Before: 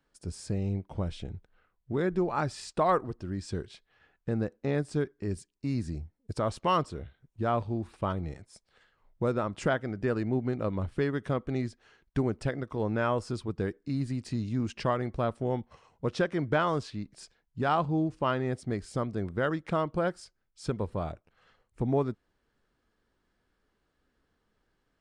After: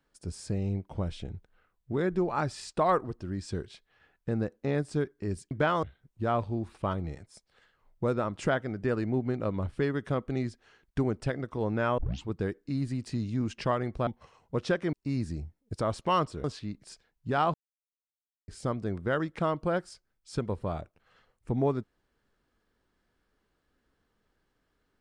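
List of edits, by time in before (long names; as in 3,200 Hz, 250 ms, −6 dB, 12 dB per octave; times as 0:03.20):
0:05.51–0:07.02: swap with 0:16.43–0:16.75
0:13.17: tape start 0.28 s
0:15.26–0:15.57: remove
0:17.85–0:18.79: silence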